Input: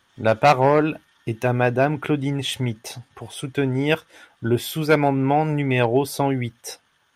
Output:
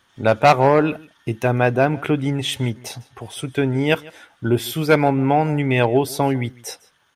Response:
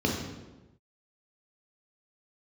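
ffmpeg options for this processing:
-af "aecho=1:1:153:0.075,volume=2dB"

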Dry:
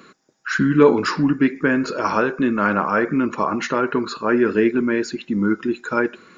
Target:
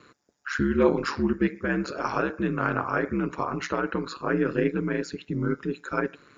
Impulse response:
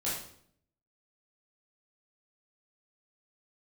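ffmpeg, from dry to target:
-af "aeval=exprs='val(0)*sin(2*PI*70*n/s)':channel_layout=same,volume=-4.5dB"

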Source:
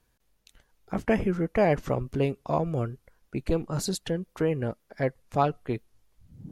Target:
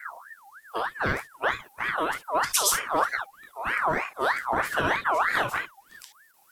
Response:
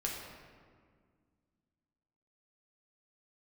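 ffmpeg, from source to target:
-filter_complex "[0:a]areverse,acompressor=threshold=-26dB:ratio=4,aemphasis=mode=production:type=75kf[link_01];[1:a]atrim=start_sample=2205,atrim=end_sample=3528[link_02];[link_01][link_02]afir=irnorm=-1:irlink=0,aeval=exprs='val(0)*sin(2*PI*1300*n/s+1300*0.4/3.2*sin(2*PI*3.2*n/s))':channel_layout=same,volume=5dB"

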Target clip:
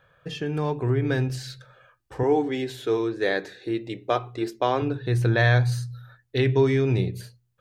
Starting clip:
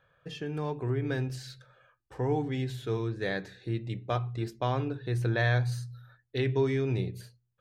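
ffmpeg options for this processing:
ffmpeg -i in.wav -filter_complex "[0:a]asettb=1/sr,asplit=3[link_01][link_02][link_03];[link_01]atrim=end=2.234[link_04];[link_02]atrim=start=2.23:end=4.82,asetpts=PTS-STARTPTS,afade=type=in:duration=0.004:curve=qsin,afade=type=out:start_time=2.586:duration=0.004:curve=qsin,lowshelf=frequency=230:width_type=q:width=1.5:gain=-11[link_05];[link_03]atrim=start=4.816[link_06];[link_04][link_05]acrossfade=duration=0.004:curve1=hsin:curve2=qsin[link_07];[link_07][link_06]acrossfade=duration=0.004:curve1=qsin:curve2=hsin,volume=7dB" out.wav

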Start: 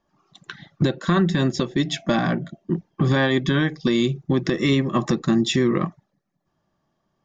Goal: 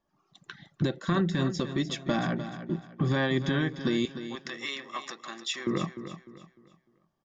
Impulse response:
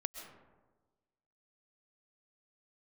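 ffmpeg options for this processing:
-filter_complex "[0:a]asettb=1/sr,asplit=3[link_01][link_02][link_03];[link_01]atrim=end=4.054[link_04];[link_02]atrim=start=4.05:end=5.67,asetpts=PTS-STARTPTS,afade=type=in:duration=0.004:curve=qsin,afade=type=out:start_time=1.616:duration=0.004:curve=qsin,highpass=950[link_05];[link_03]atrim=start=5.666[link_06];[link_04][link_05]acrossfade=duration=0.004:curve1=hsin:curve2=qsin[link_07];[link_07][link_06]acrossfade=duration=0.004:curve1=qsin:curve2=hsin,aecho=1:1:301|602|903|1204:0.282|0.0958|0.0326|0.0111,volume=-7.5dB"

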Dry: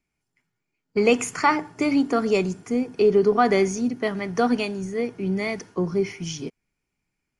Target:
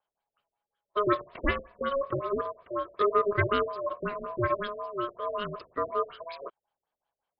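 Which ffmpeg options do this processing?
ffmpeg -i in.wav -filter_complex "[0:a]asettb=1/sr,asplit=3[link_01][link_02][link_03];[link_01]atrim=end=1.214[link_04];[link_02]atrim=start=1.21:end=3.64,asetpts=PTS-STARTPTS,afade=type=in:duration=0.004:curve=qsin,afade=type=out:start_time=2.426:duration=0.004:curve=qsin,aeval=exprs='0.501*(cos(1*acos(clip(val(0)/0.501,-1,1)))-cos(1*PI/2))+0.0224*(cos(7*acos(clip(val(0)/0.501,-1,1)))-cos(7*PI/2))':channel_layout=same[link_05];[link_03]atrim=start=3.636[link_06];[link_04][link_05]acrossfade=duration=0.004:curve1=hsin:curve2=qsin[link_07];[link_07][link_06]acrossfade=duration=0.004:curve1=qsin:curve2=hsin,aeval=exprs='val(0)*sin(2*PI*830*n/s)':channel_layout=same,afftfilt=real='re*lt(b*sr/1024,590*pow(5200/590,0.5+0.5*sin(2*PI*5.4*pts/sr)))':imag='im*lt(b*sr/1024,590*pow(5200/590,0.5+0.5*sin(2*PI*5.4*pts/sr)))':win_size=1024:overlap=0.75,volume=-3dB" out.wav

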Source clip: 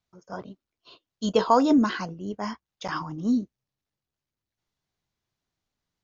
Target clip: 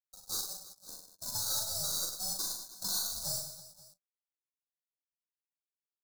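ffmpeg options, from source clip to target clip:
ffmpeg -i in.wav -filter_complex "[0:a]afftfilt=real='re*pow(10,22/40*sin(2*PI*(1*log(max(b,1)*sr/1024/100)/log(2)-(-0.59)*(pts-256)/sr)))':imag='im*pow(10,22/40*sin(2*PI*(1*log(max(b,1)*sr/1024/100)/log(2)-(-0.59)*(pts-256)/sr)))':win_size=1024:overlap=0.75,highpass=360,acompressor=threshold=-34dB:ratio=10,aresample=8000,aeval=exprs='sgn(val(0))*max(abs(val(0))-0.00119,0)':channel_layout=same,aresample=44100,acrusher=samples=17:mix=1:aa=0.000001,aeval=exprs='val(0)*sin(2*PI*380*n/s)':channel_layout=same,flanger=delay=9:depth=3.3:regen=30:speed=0.76:shape=sinusoidal,asplit=2[link_01][link_02];[link_02]acrusher=bits=7:mix=0:aa=0.000001,volume=-7dB[link_03];[link_01][link_03]amix=inputs=2:normalize=0,aexciter=amount=14.2:drive=6.4:freq=3000,aeval=exprs='0.0596*(cos(1*acos(clip(val(0)/0.0596,-1,1)))-cos(1*PI/2))+0.00266*(cos(8*acos(clip(val(0)/0.0596,-1,1)))-cos(8*PI/2))':channel_layout=same,asuperstop=centerf=2500:order=12:qfactor=1.1,aecho=1:1:40|100|190|325|527.5:0.631|0.398|0.251|0.158|0.1,volume=-5.5dB" out.wav

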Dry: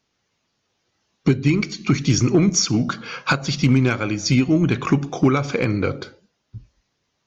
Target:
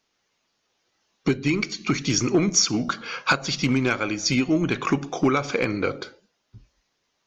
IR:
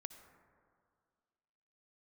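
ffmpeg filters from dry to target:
-af "equalizer=frequency=100:width=0.56:gain=-11"

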